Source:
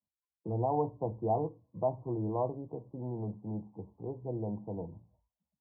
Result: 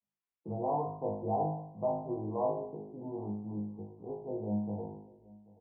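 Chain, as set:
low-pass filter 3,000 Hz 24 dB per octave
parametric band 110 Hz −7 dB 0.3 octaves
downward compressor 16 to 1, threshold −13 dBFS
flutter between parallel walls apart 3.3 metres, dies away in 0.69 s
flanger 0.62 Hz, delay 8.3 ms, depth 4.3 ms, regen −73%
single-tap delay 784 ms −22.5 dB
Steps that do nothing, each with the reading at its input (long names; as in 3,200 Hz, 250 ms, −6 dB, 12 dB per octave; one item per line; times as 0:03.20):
low-pass filter 3,000 Hz: nothing at its input above 1,100 Hz
downward compressor, threshold −13 dBFS: peak of its input −19.0 dBFS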